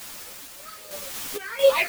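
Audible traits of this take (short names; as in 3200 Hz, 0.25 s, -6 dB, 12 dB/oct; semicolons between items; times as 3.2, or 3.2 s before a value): phasing stages 6, 2.5 Hz, lowest notch 790–2000 Hz; a quantiser's noise floor 6-bit, dither triangular; random-step tremolo 4.4 Hz, depth 75%; a shimmering, thickened sound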